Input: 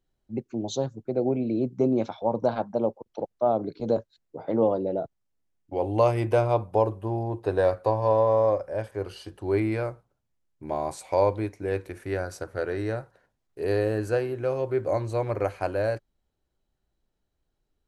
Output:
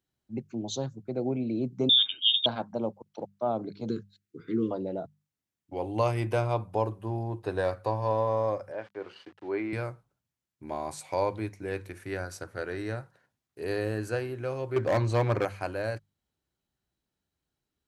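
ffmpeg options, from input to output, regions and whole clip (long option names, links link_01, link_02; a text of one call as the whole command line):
ffmpeg -i in.wav -filter_complex "[0:a]asettb=1/sr,asplit=3[link_01][link_02][link_03];[link_01]atrim=end=1.894[link_04];[link_02]atrim=start=1.89:end=2.46,asetpts=PTS-STARTPTS,afade=type=in:duration=0.004:curve=qsin,afade=type=out:start_time=0.566:duration=0.004:curve=qsin,lowshelf=frequency=170:gain=11,lowpass=frequency=3200:width_type=q:width=0.5098,lowpass=frequency=3200:width_type=q:width=0.6013,lowpass=frequency=3200:width_type=q:width=0.9,lowpass=frequency=3200:width_type=q:width=2.563,afreqshift=-3800[link_05];[link_03]atrim=start=2.456[link_06];[link_04][link_05]acrossfade=duration=0.004:curve1=hsin:curve2=qsin[link_07];[link_07][link_06]acrossfade=duration=0.004:curve1=qsin:curve2=hsin,asettb=1/sr,asplit=3[link_08][link_09][link_10];[link_08]atrim=end=3.894[link_11];[link_09]atrim=start=3.89:end=4.71,asetpts=PTS-STARTPTS,afade=type=in:duration=0.004:curve=qsin,afade=type=out:start_time=0.816:duration=0.004:curve=qsin,asuperstop=centerf=710:order=8:qfactor=0.77,equalizer=frequency=440:width=1.7:gain=8.5[link_12];[link_10]atrim=start=4.706[link_13];[link_11][link_12]acrossfade=duration=0.004:curve1=hsin:curve2=qsin[link_14];[link_14][link_13]acrossfade=duration=0.004:curve1=qsin:curve2=hsin,asettb=1/sr,asplit=3[link_15][link_16][link_17];[link_15]atrim=end=8.724[link_18];[link_16]atrim=start=8.72:end=9.73,asetpts=PTS-STARTPTS,afade=type=in:duration=0.004:curve=qsin,afade=type=out:start_time=1.006:duration=0.004:curve=qsin,aeval=exprs='val(0)*gte(abs(val(0)),0.00501)':channel_layout=same,highpass=280,lowpass=2600[link_19];[link_17]atrim=start=9.726[link_20];[link_18][link_19]acrossfade=duration=0.004:curve1=hsin:curve2=qsin[link_21];[link_21][link_20]acrossfade=duration=0.004:curve1=qsin:curve2=hsin,asettb=1/sr,asplit=3[link_22][link_23][link_24];[link_22]atrim=end=14.764[link_25];[link_23]atrim=start=14.76:end=15.45,asetpts=PTS-STARTPTS,afade=type=in:duration=0.004:curve=qsin,afade=type=out:start_time=0.686:duration=0.004:curve=qsin,acontrast=86,lowpass=6400,asoftclip=type=hard:threshold=-14dB[link_26];[link_24]atrim=start=15.446[link_27];[link_25][link_26]acrossfade=duration=0.004:curve1=hsin:curve2=qsin[link_28];[link_28][link_27]acrossfade=duration=0.004:curve1=qsin:curve2=hsin,highpass=90,equalizer=frequency=520:width_type=o:width=1.8:gain=-7,bandreject=frequency=50:width_type=h:width=6,bandreject=frequency=100:width_type=h:width=6,bandreject=frequency=150:width_type=h:width=6,bandreject=frequency=200:width_type=h:width=6" out.wav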